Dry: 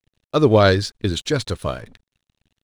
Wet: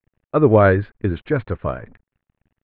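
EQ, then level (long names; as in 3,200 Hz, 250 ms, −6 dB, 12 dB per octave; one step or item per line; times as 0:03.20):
inverse Chebyshev low-pass filter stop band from 5,300 Hz, stop band 50 dB
+1.0 dB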